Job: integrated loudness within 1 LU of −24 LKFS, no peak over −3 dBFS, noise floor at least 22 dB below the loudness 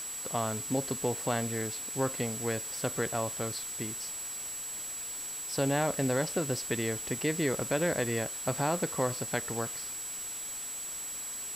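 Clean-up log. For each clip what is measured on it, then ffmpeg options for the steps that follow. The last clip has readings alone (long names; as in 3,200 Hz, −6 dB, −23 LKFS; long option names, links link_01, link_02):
interfering tone 7,800 Hz; level of the tone −37 dBFS; background noise floor −39 dBFS; target noise floor −54 dBFS; integrated loudness −32.0 LKFS; sample peak −16.5 dBFS; target loudness −24.0 LKFS
→ -af "bandreject=frequency=7800:width=30"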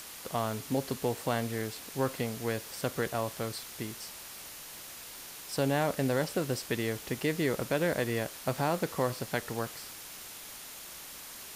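interfering tone none found; background noise floor −46 dBFS; target noise floor −56 dBFS
→ -af "afftdn=noise_reduction=10:noise_floor=-46"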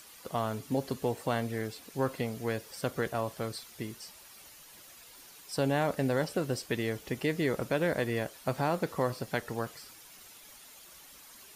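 background noise floor −53 dBFS; target noise floor −55 dBFS
→ -af "afftdn=noise_reduction=6:noise_floor=-53"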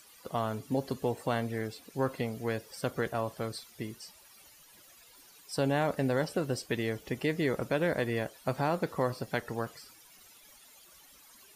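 background noise floor −57 dBFS; integrated loudness −33.0 LKFS; sample peak −17.0 dBFS; target loudness −24.0 LKFS
→ -af "volume=9dB"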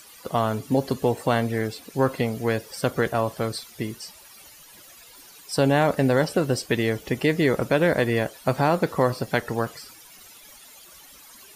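integrated loudness −24.0 LKFS; sample peak −8.0 dBFS; background noise floor −48 dBFS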